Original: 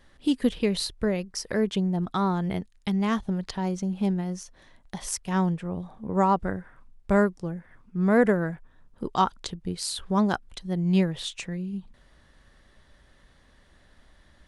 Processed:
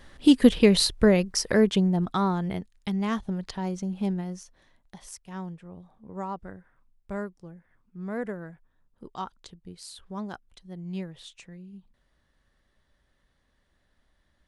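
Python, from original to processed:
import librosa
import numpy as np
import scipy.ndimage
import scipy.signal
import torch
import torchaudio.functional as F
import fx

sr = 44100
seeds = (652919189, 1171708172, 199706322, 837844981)

y = fx.gain(x, sr, db=fx.line((1.3, 7.0), (2.59, -2.5), (4.18, -2.5), (5.17, -12.5)))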